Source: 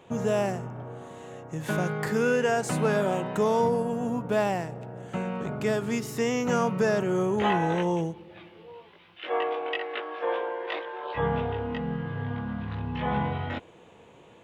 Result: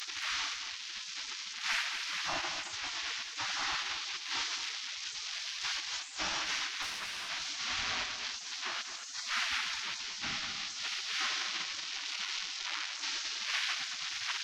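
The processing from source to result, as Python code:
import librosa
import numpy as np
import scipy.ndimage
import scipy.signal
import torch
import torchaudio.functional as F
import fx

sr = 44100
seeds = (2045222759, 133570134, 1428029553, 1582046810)

p1 = fx.delta_mod(x, sr, bps=32000, step_db=-24.0)
p2 = fx.dmg_wind(p1, sr, seeds[0], corner_hz=500.0, level_db=-27.0)
p3 = fx.peak_eq(p2, sr, hz=520.0, db=12.5, octaves=0.48)
p4 = fx.rider(p3, sr, range_db=5, speed_s=2.0)
p5 = fx.low_shelf(p4, sr, hz=190.0, db=10.5)
p6 = fx.hum_notches(p5, sr, base_hz=60, count=6)
p7 = p6 + fx.echo_feedback(p6, sr, ms=224, feedback_pct=25, wet_db=-24, dry=0)
p8 = fx.spec_gate(p7, sr, threshold_db=-30, keep='weak')
p9 = fx.tube_stage(p8, sr, drive_db=32.0, bias=0.55, at=(6.82, 7.29))
y = p9 + 10.0 ** (-9.5 / 20.0) * np.pad(p9, (int(224 * sr / 1000.0), 0))[:len(p9)]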